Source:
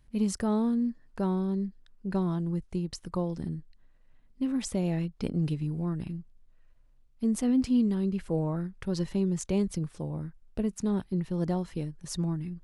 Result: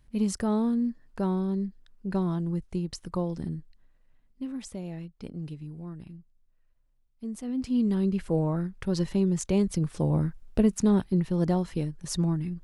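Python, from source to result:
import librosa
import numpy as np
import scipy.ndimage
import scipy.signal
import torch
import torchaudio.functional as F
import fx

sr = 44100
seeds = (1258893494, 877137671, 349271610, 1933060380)

y = fx.gain(x, sr, db=fx.line((3.58, 1.0), (4.85, -8.5), (7.44, -8.5), (7.95, 3.0), (9.7, 3.0), (10.13, 10.5), (11.35, 4.0)))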